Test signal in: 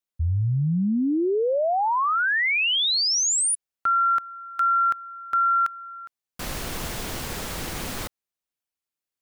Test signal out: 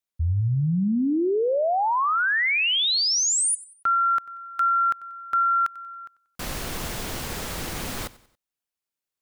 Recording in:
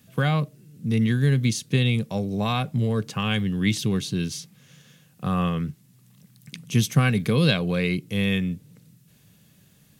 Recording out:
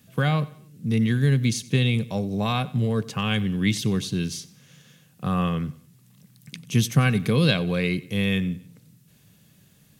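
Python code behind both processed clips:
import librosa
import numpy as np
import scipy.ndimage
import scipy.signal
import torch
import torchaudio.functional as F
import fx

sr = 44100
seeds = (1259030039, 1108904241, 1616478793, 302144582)

y = fx.echo_feedback(x, sr, ms=93, feedback_pct=42, wet_db=-20)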